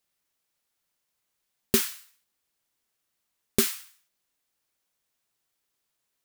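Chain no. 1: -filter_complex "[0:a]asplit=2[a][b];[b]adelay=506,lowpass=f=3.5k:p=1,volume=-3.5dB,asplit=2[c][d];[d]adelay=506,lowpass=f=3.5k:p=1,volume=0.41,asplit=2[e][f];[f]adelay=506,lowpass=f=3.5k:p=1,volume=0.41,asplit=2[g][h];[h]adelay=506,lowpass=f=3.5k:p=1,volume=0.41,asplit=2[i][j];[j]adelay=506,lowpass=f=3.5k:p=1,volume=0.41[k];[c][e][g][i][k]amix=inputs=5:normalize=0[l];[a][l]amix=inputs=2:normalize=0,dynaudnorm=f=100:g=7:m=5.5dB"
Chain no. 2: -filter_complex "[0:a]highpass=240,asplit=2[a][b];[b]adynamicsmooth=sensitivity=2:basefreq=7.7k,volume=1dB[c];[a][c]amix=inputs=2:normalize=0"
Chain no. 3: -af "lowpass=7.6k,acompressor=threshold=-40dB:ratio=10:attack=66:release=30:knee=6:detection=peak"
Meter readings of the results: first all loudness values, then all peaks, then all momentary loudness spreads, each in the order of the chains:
-26.5, -24.0, -37.0 LUFS; -2.5, -1.5, -9.0 dBFS; 23, 9, 10 LU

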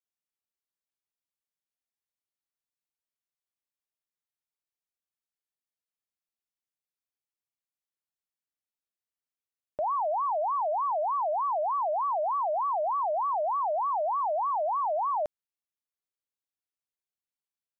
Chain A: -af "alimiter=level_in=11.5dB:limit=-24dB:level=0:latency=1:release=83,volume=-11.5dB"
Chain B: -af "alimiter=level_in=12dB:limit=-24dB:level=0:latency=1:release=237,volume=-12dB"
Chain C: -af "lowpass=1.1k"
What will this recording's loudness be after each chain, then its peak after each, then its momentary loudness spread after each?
-39.0, -39.5, -30.0 LUFS; -35.5, -36.0, -25.5 dBFS; 1, 1, 1 LU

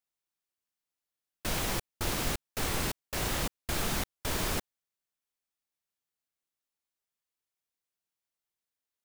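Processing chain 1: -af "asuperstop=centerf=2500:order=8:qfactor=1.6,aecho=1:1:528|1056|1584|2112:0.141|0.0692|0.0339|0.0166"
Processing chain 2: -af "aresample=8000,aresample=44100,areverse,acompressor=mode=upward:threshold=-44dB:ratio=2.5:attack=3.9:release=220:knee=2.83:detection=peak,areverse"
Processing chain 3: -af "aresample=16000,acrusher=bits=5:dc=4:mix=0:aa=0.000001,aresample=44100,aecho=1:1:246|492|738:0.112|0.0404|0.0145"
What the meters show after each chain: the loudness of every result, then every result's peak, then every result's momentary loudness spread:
-33.5, -35.5, -36.0 LUFS; -17.5, -19.0, -15.0 dBFS; 16, 3, 4 LU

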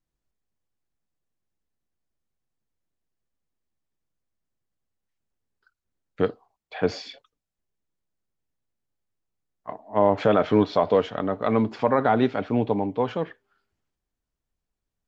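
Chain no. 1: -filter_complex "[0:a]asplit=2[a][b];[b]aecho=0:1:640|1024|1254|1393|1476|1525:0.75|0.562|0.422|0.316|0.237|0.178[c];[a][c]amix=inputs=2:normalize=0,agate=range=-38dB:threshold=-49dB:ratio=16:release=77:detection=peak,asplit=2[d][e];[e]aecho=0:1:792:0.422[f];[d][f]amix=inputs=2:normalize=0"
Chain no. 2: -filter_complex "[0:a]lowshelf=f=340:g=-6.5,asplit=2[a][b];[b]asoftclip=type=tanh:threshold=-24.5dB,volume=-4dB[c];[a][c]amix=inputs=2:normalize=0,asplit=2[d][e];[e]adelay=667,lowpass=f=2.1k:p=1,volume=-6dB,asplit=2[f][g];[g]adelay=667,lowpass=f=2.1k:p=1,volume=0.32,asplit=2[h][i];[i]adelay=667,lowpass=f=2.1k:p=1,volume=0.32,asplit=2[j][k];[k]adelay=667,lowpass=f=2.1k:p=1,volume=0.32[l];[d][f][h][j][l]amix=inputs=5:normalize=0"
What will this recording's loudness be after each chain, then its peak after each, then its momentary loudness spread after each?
-21.5, -23.5 LUFS; -4.0, -7.5 dBFS; 17, 19 LU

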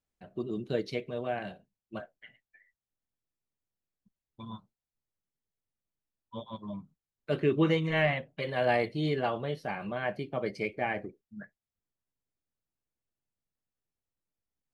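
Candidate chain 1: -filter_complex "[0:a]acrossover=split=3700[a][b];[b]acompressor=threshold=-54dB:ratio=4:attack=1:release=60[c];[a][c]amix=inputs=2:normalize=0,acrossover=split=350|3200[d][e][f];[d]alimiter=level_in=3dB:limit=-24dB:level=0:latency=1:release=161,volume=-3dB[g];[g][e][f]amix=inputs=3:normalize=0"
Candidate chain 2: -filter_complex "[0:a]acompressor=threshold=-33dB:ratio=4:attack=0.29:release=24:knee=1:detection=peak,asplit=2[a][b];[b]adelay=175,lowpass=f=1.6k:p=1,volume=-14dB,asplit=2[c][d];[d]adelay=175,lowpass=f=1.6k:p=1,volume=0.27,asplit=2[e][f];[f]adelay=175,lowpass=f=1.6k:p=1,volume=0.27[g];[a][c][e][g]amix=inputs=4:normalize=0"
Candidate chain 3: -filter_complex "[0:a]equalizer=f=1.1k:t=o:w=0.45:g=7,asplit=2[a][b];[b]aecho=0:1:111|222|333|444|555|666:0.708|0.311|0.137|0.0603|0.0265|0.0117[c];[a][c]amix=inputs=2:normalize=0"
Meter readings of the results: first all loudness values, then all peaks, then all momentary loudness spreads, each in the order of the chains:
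-32.5, -39.5, -29.5 LUFS; -14.0, -26.0, -11.5 dBFS; 18, 13, 20 LU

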